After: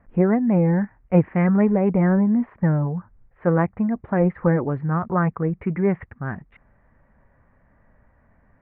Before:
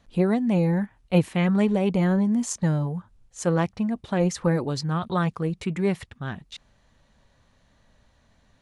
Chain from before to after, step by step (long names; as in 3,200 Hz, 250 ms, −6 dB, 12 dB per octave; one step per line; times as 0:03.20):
Butterworth low-pass 2,100 Hz 48 dB per octave
level +3.5 dB